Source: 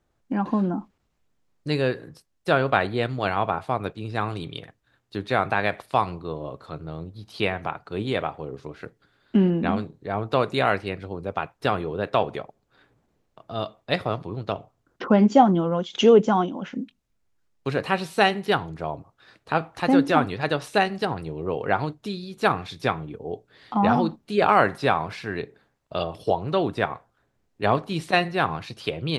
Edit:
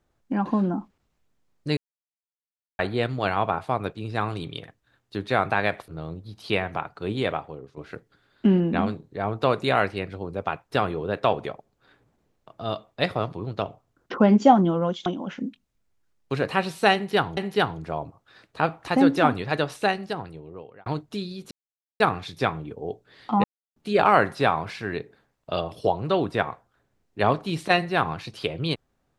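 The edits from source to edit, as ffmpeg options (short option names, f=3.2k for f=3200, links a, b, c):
-filter_complex "[0:a]asplit=11[a][b][c][d][e][f][g][h][i][j][k];[a]atrim=end=1.77,asetpts=PTS-STARTPTS,afade=t=out:st=1.766:d=0.004:c=hsin[l];[b]atrim=start=1.77:end=2.79,asetpts=PTS-STARTPTS,volume=0[m];[c]atrim=start=2.79:end=5.882,asetpts=PTS-STARTPTS,afade=t=in:d=0.004:c=hsin[n];[d]atrim=start=6.778:end=8.67,asetpts=PTS-STARTPTS,afade=t=out:st=1.432:d=0.46:silence=0.223872[o];[e]atrim=start=8.67:end=15.962,asetpts=PTS-STARTPTS,afade=t=in:d=0.004:c=hsin:silence=0.223872[p];[f]atrim=start=16.408:end=18.722[q];[g]atrim=start=18.288:end=21.78,asetpts=PTS-STARTPTS,afade=t=out:st=2.212:d=1.28[r];[h]atrim=start=21.78:end=22.43,asetpts=PTS-STARTPTS,afade=t=in:d=0.004:c=hsin,afade=t=out:st=0.646:d=0.004:c=hsin,apad=pad_dur=0.49[s];[i]atrim=start=22.43:end=23.87,asetpts=PTS-STARTPTS,afade=t=in:d=0.004:c=hsin,afade=t=out:st=1.436:d=0.004:c=hsin[t];[j]atrim=start=23.87:end=24.19,asetpts=PTS-STARTPTS,volume=0[u];[k]atrim=start=24.19,asetpts=PTS-STARTPTS,afade=t=in:d=0.004:c=hsin[v];[l][m][n]concat=n=3:v=0:a=1[w];[o][p]concat=n=2:v=0:a=1[x];[w][x]acrossfade=d=0.004:c1=hsin:c2=hsin[y];[y][q]acrossfade=d=0.004:c1=hsin:c2=hsin[z];[r][s][t][u][v]concat=n=5:v=0:a=1[aa];[z][aa]acrossfade=d=0.004:c1=hsin:c2=hsin"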